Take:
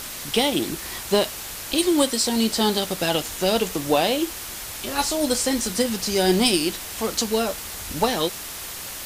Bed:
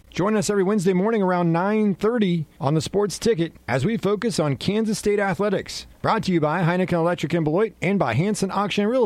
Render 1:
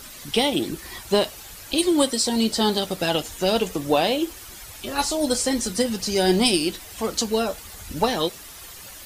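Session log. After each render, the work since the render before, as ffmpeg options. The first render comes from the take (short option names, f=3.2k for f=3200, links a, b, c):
-af "afftdn=nr=10:nf=-35"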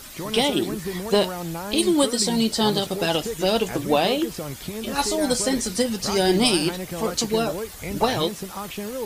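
-filter_complex "[1:a]volume=-11dB[a];[0:a][a]amix=inputs=2:normalize=0"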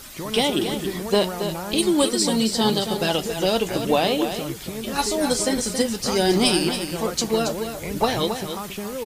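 -af "aecho=1:1:275:0.376"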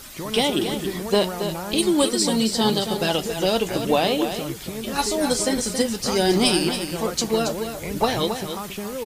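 -af anull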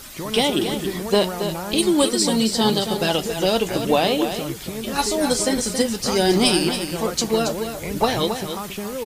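-af "volume=1.5dB"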